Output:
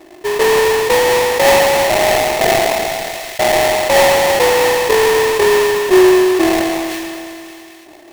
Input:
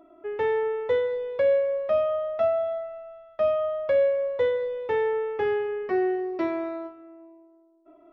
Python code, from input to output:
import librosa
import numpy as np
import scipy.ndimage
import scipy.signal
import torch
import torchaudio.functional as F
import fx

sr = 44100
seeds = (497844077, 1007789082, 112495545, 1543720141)

p1 = scipy.ndimage.median_filter(x, 41, mode='constant')
p2 = fx.peak_eq(p1, sr, hz=540.0, db=12.5, octaves=0.88)
p3 = fx.over_compress(p2, sr, threshold_db=-18.0, ratio=-0.5)
p4 = p2 + (p3 * librosa.db_to_amplitude(-1.0))
p5 = fx.sample_hold(p4, sr, seeds[0], rate_hz=1400.0, jitter_pct=20)
p6 = fx.small_body(p5, sr, hz=(360.0, 1800.0, 2600.0), ring_ms=45, db=8)
p7 = p6 + fx.echo_wet_highpass(p6, sr, ms=219, feedback_pct=66, hz=1900.0, wet_db=-14, dry=0)
p8 = fx.sustainer(p7, sr, db_per_s=21.0)
y = p8 * librosa.db_to_amplitude(-1.5)